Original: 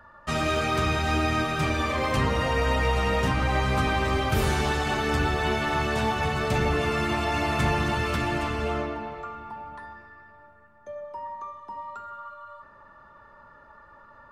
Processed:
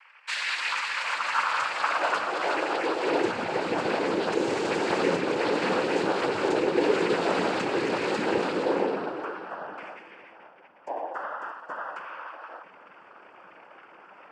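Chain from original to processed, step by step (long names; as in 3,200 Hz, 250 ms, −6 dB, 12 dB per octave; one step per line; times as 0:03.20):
low-shelf EQ 220 Hz +6.5 dB
downward compressor, threshold −21 dBFS, peak gain reduction 6.5 dB
high-pass filter sweep 2,200 Hz → 370 Hz, 0:00.39–0:03.50
cochlear-implant simulation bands 8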